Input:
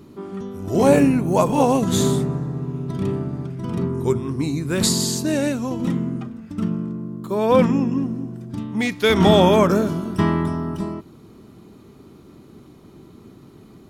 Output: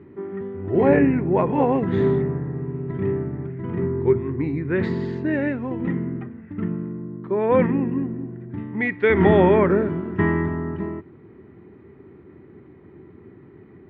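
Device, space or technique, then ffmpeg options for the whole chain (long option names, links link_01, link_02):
bass cabinet: -af "highpass=68,equalizer=frequency=86:width_type=q:width=4:gain=6,equalizer=frequency=220:width_type=q:width=4:gain=-3,equalizer=frequency=380:width_type=q:width=4:gain=6,equalizer=frequency=640:width_type=q:width=4:gain=-4,equalizer=frequency=1200:width_type=q:width=4:gain=-5,equalizer=frequency=1900:width_type=q:width=4:gain=10,lowpass=frequency=2200:width=0.5412,lowpass=frequency=2200:width=1.3066,volume=-2dB"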